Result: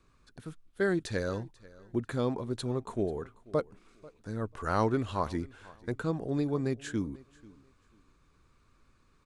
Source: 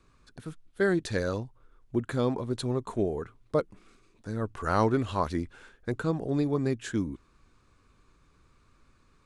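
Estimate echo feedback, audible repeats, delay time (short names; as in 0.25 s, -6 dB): 23%, 2, 0.49 s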